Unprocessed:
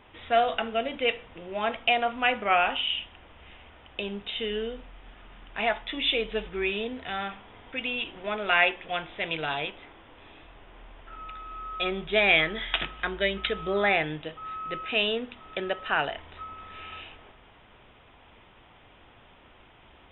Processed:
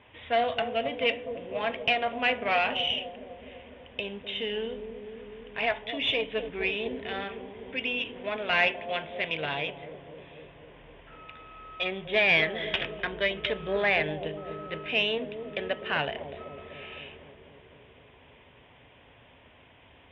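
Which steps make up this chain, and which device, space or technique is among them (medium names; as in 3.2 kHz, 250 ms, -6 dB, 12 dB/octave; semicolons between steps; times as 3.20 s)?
analogue delay pedal into a guitar amplifier (bucket-brigade echo 250 ms, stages 1024, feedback 75%, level -7.5 dB; valve stage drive 18 dB, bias 0.55; cabinet simulation 78–3400 Hz, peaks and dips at 200 Hz -7 dB, 350 Hz -8 dB, 790 Hz -5 dB, 1.3 kHz -10 dB); trim +4 dB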